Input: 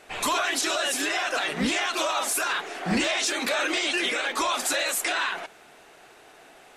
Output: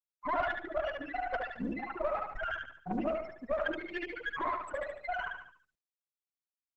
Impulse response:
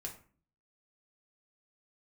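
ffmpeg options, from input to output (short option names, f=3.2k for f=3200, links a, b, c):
-filter_complex "[0:a]afftfilt=real='re*gte(hypot(re,im),0.251)':imag='im*gte(hypot(re,im),0.251)':win_size=1024:overlap=0.75,firequalizer=gain_entry='entry(100,0);entry(150,-8);entry(270,-4);entry(400,-2);entry(730,4);entry(1100,-7);entry(1600,-3);entry(3000,-25);entry(6700,-28);entry(11000,10)':delay=0.05:min_phase=1,crystalizer=i=5.5:c=0,aeval=exprs='(tanh(15.8*val(0)+0.7)-tanh(0.7))/15.8':c=same,asplit=2[a][b];[b]aecho=0:1:72|144|216|288|360:0.668|0.281|0.118|0.0495|0.0208[c];[a][c]amix=inputs=2:normalize=0" -ar 48000 -c:a libopus -b:a 12k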